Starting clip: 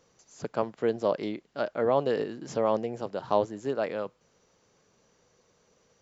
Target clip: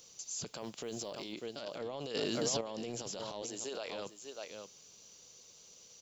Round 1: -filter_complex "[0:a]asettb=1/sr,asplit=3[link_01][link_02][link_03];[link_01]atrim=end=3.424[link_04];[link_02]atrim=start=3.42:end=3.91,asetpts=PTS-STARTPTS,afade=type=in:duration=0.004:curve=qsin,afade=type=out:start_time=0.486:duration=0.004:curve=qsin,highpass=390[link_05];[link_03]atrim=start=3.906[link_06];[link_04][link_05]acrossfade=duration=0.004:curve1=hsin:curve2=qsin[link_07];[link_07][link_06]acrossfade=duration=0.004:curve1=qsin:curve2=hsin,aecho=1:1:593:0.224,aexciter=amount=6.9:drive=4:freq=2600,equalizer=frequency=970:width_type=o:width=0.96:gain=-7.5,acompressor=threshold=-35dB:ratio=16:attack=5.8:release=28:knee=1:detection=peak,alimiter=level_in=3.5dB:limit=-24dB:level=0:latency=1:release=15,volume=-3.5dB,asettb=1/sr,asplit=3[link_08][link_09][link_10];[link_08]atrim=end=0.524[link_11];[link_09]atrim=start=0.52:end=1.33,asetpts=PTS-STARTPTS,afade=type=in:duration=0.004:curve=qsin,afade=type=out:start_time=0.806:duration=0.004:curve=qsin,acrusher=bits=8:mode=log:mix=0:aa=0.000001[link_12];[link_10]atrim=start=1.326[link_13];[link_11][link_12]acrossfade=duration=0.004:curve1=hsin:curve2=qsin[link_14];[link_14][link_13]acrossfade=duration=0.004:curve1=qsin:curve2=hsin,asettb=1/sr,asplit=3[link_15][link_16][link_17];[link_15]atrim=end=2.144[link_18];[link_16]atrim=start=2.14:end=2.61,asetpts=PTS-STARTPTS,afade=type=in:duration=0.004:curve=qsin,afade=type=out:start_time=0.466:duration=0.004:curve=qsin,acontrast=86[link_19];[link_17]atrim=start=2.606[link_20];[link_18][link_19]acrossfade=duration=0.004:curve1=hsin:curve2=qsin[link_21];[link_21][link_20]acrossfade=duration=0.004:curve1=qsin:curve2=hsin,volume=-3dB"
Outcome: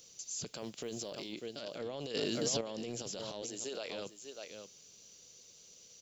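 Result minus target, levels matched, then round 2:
1,000 Hz band −3.5 dB
-filter_complex "[0:a]asettb=1/sr,asplit=3[link_01][link_02][link_03];[link_01]atrim=end=3.424[link_04];[link_02]atrim=start=3.42:end=3.91,asetpts=PTS-STARTPTS,afade=type=in:duration=0.004:curve=qsin,afade=type=out:start_time=0.486:duration=0.004:curve=qsin,highpass=390[link_05];[link_03]atrim=start=3.906[link_06];[link_04][link_05]acrossfade=duration=0.004:curve1=hsin:curve2=qsin[link_07];[link_07][link_06]acrossfade=duration=0.004:curve1=qsin:curve2=hsin,aecho=1:1:593:0.224,aexciter=amount=6.9:drive=4:freq=2600,acompressor=threshold=-35dB:ratio=16:attack=5.8:release=28:knee=1:detection=peak,alimiter=level_in=3.5dB:limit=-24dB:level=0:latency=1:release=15,volume=-3.5dB,asettb=1/sr,asplit=3[link_08][link_09][link_10];[link_08]atrim=end=0.524[link_11];[link_09]atrim=start=0.52:end=1.33,asetpts=PTS-STARTPTS,afade=type=in:duration=0.004:curve=qsin,afade=type=out:start_time=0.806:duration=0.004:curve=qsin,acrusher=bits=8:mode=log:mix=0:aa=0.000001[link_12];[link_10]atrim=start=1.326[link_13];[link_11][link_12]acrossfade=duration=0.004:curve1=hsin:curve2=qsin[link_14];[link_14][link_13]acrossfade=duration=0.004:curve1=qsin:curve2=hsin,asettb=1/sr,asplit=3[link_15][link_16][link_17];[link_15]atrim=end=2.144[link_18];[link_16]atrim=start=2.14:end=2.61,asetpts=PTS-STARTPTS,afade=type=in:duration=0.004:curve=qsin,afade=type=out:start_time=0.466:duration=0.004:curve=qsin,acontrast=86[link_19];[link_17]atrim=start=2.606[link_20];[link_18][link_19]acrossfade=duration=0.004:curve1=hsin:curve2=qsin[link_21];[link_21][link_20]acrossfade=duration=0.004:curve1=qsin:curve2=hsin,volume=-3dB"

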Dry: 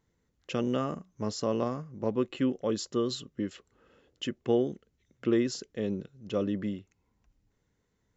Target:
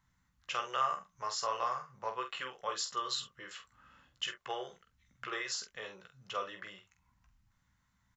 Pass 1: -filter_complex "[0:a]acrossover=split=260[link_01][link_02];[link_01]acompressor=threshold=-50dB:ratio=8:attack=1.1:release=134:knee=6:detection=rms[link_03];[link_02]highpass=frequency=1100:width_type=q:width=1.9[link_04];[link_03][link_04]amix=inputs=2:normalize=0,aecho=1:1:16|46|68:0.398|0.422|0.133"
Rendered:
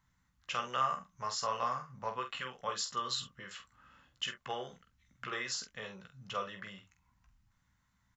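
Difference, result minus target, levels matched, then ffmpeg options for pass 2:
downward compressor: peak gain reduction −8.5 dB
-filter_complex "[0:a]acrossover=split=260[link_01][link_02];[link_01]acompressor=threshold=-59.5dB:ratio=8:attack=1.1:release=134:knee=6:detection=rms[link_03];[link_02]highpass=frequency=1100:width_type=q:width=1.9[link_04];[link_03][link_04]amix=inputs=2:normalize=0,aecho=1:1:16|46|68:0.398|0.422|0.133"

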